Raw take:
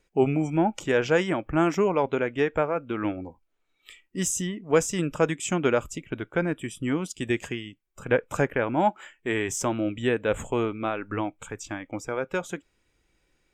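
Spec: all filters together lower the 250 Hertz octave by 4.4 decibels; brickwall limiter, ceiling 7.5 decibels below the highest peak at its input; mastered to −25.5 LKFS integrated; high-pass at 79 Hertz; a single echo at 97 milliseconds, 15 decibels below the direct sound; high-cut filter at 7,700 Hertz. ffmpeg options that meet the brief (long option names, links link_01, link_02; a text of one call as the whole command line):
ffmpeg -i in.wav -af "highpass=79,lowpass=7700,equalizer=frequency=250:width_type=o:gain=-6.5,alimiter=limit=-16.5dB:level=0:latency=1,aecho=1:1:97:0.178,volume=5dB" out.wav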